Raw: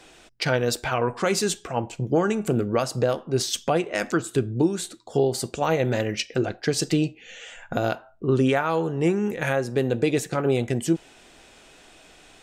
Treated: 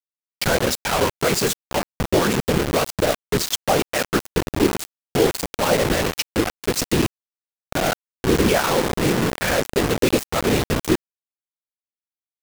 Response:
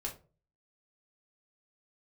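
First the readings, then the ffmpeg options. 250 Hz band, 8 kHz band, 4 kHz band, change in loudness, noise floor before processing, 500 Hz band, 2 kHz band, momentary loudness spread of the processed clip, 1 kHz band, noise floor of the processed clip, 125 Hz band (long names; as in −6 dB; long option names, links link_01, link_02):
+2.5 dB, +5.5 dB, +7.0 dB, +3.5 dB, −52 dBFS, +2.5 dB, +5.5 dB, 5 LU, +4.5 dB, below −85 dBFS, +1.0 dB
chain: -af "afftfilt=real='hypot(re,im)*cos(2*PI*random(0))':imag='hypot(re,im)*sin(2*PI*random(1))':win_size=512:overlap=0.75,acrusher=bits=4:mix=0:aa=0.000001,volume=8.5dB"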